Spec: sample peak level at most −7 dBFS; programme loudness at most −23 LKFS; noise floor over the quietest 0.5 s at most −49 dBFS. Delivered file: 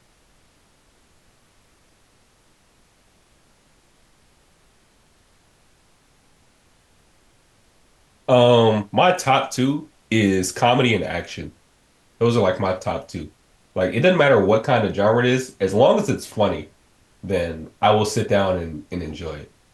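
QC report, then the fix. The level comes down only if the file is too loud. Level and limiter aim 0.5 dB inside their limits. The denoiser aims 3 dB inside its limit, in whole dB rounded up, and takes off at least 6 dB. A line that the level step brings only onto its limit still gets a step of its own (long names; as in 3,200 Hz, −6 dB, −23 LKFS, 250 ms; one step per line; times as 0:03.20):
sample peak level −4.0 dBFS: out of spec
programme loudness −19.5 LKFS: out of spec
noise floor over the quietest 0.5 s −58 dBFS: in spec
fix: level −4 dB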